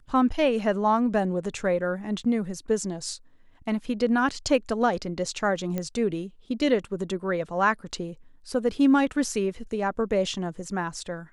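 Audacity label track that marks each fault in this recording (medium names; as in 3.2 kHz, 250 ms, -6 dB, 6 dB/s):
5.780000	5.780000	pop -16 dBFS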